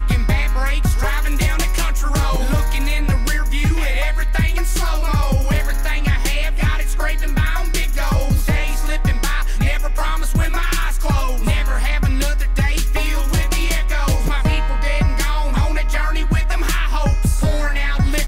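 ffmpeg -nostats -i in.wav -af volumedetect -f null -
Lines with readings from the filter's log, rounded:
mean_volume: -15.6 dB
max_volume: -7.1 dB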